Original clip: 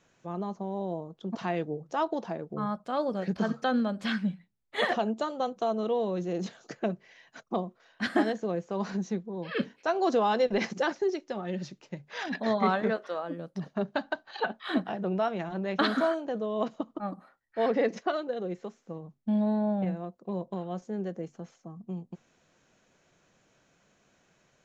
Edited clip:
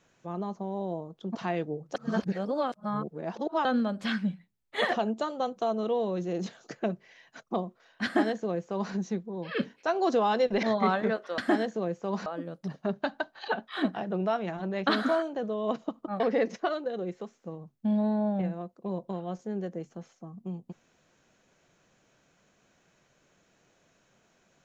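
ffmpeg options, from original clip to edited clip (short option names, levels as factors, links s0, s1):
-filter_complex "[0:a]asplit=7[s0][s1][s2][s3][s4][s5][s6];[s0]atrim=end=1.952[s7];[s1]atrim=start=1.948:end=3.652,asetpts=PTS-STARTPTS,areverse[s8];[s2]atrim=start=3.648:end=10.632[s9];[s3]atrim=start=12.428:end=13.182[s10];[s4]atrim=start=8.048:end=8.932[s11];[s5]atrim=start=13.178:end=17.122[s12];[s6]atrim=start=17.628[s13];[s7][s8]acrossfade=d=0.004:c1=hsin:c2=hsin[s14];[s14][s9]acrossfade=d=0.004:c1=hsin:c2=hsin[s15];[s15][s10]acrossfade=d=0.004:c1=hsin:c2=hsin[s16];[s16][s11]acrossfade=d=0.004:c1=hsin:c2=hsin[s17];[s17][s12]acrossfade=d=0.004:c1=hsin:c2=hsin[s18];[s18][s13]acrossfade=d=0.004:c1=hsin:c2=hsin"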